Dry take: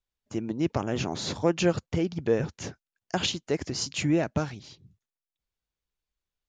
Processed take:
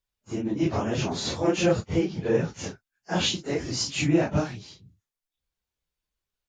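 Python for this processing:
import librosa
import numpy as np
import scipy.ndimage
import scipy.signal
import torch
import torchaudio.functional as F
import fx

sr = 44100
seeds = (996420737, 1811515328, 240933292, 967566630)

y = fx.phase_scramble(x, sr, seeds[0], window_ms=100)
y = y * librosa.db_to_amplitude(2.5)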